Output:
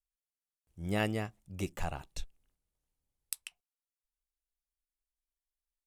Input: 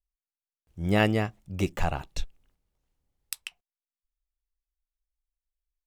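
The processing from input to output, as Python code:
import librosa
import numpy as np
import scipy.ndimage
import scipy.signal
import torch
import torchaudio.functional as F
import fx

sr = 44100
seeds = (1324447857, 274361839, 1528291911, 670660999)

y = fx.peak_eq(x, sr, hz=10000.0, db=8.5, octaves=1.1)
y = y * librosa.db_to_amplitude(-9.0)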